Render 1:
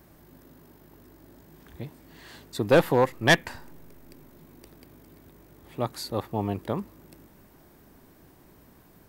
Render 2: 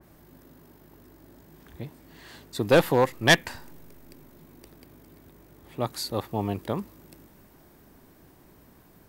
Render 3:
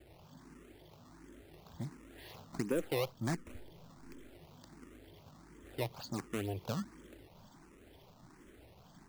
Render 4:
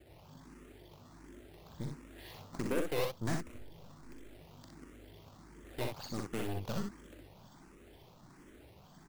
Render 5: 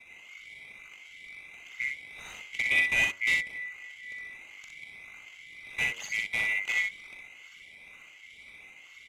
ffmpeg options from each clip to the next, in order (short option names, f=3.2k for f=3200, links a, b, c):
-af "adynamicequalizer=threshold=0.00708:dfrequency=2400:dqfactor=0.7:tfrequency=2400:tqfactor=0.7:attack=5:release=100:ratio=0.375:range=2:mode=boostabove:tftype=highshelf"
-filter_complex "[0:a]acrossover=split=640|5100[a][b][c];[a]acompressor=threshold=-29dB:ratio=4[d];[b]acompressor=threshold=-46dB:ratio=4[e];[c]acompressor=threshold=-54dB:ratio=4[f];[d][e][f]amix=inputs=3:normalize=0,acrusher=samples=16:mix=1:aa=0.000001:lfo=1:lforange=25.6:lforate=2.1,asplit=2[g][h];[h]afreqshift=1.4[i];[g][i]amix=inputs=2:normalize=1,volume=-1dB"
-filter_complex "[0:a]aeval=exprs='0.0841*(cos(1*acos(clip(val(0)/0.0841,-1,1)))-cos(1*PI/2))+0.00596*(cos(5*acos(clip(val(0)/0.0841,-1,1)))-cos(5*PI/2))+0.0119*(cos(8*acos(clip(val(0)/0.0841,-1,1)))-cos(8*PI/2))':c=same,asplit=2[a][b];[b]aecho=0:1:42|62:0.335|0.596[c];[a][c]amix=inputs=2:normalize=0,volume=-3dB"
-af "afftfilt=real='real(if(lt(b,920),b+92*(1-2*mod(floor(b/92),2)),b),0)':imag='imag(if(lt(b,920),b+92*(1-2*mod(floor(b/92),2)),b),0)':win_size=2048:overlap=0.75,lowpass=9.6k,bandreject=f=94.1:t=h:w=4,bandreject=f=188.2:t=h:w=4,bandreject=f=282.3:t=h:w=4,bandreject=f=376.4:t=h:w=4,bandreject=f=470.5:t=h:w=4,bandreject=f=564.6:t=h:w=4,bandreject=f=658.7:t=h:w=4,bandreject=f=752.8:t=h:w=4,bandreject=f=846.9:t=h:w=4,bandreject=f=941:t=h:w=4,bandreject=f=1.0351k:t=h:w=4,bandreject=f=1.1292k:t=h:w=4,bandreject=f=1.2233k:t=h:w=4,bandreject=f=1.3174k:t=h:w=4,bandreject=f=1.4115k:t=h:w=4,bandreject=f=1.5056k:t=h:w=4,bandreject=f=1.5997k:t=h:w=4,bandreject=f=1.6938k:t=h:w=4,volume=6.5dB"